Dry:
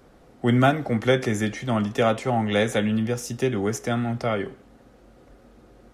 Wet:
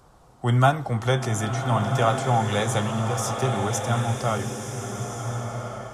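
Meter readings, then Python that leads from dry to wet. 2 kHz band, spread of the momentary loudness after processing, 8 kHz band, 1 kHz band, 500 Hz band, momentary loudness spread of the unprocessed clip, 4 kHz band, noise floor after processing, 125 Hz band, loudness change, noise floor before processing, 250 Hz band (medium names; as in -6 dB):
-1.5 dB, 10 LU, +6.0 dB, +4.0 dB, -2.5 dB, 7 LU, +0.5 dB, -53 dBFS, +4.5 dB, -1.0 dB, -53 dBFS, -5.0 dB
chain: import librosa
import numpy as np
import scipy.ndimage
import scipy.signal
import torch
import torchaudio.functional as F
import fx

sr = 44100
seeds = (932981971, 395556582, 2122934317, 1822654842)

y = fx.graphic_eq(x, sr, hz=(125, 250, 500, 1000, 2000, 8000), db=(5, -9, -5, 9, -8, 6))
y = fx.rev_bloom(y, sr, seeds[0], attack_ms=1420, drr_db=3.5)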